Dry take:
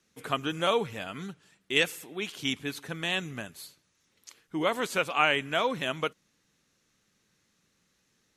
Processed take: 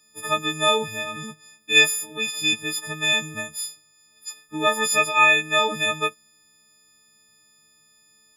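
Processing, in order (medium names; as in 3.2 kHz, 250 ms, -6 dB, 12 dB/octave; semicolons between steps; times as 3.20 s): partials quantised in pitch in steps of 6 st; trim +2 dB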